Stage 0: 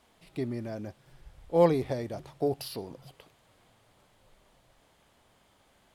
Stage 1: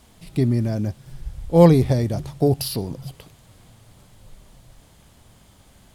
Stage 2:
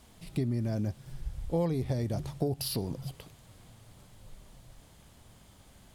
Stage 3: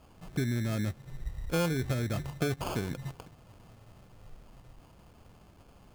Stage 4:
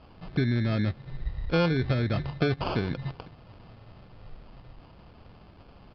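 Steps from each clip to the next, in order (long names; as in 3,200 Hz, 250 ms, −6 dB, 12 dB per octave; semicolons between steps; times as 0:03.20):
bass and treble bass +13 dB, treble +8 dB; level +6.5 dB
downward compressor 5 to 1, threshold −23 dBFS, peak gain reduction 15 dB; level −4.5 dB
decimation without filtering 23×
downsampling to 11,025 Hz; level +5 dB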